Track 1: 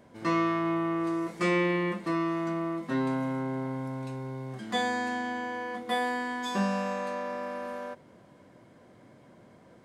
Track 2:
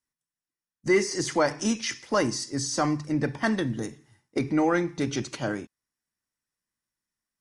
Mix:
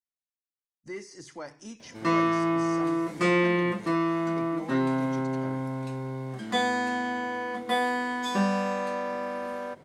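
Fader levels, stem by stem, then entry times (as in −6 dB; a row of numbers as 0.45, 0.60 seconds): +3.0, −17.0 decibels; 1.80, 0.00 seconds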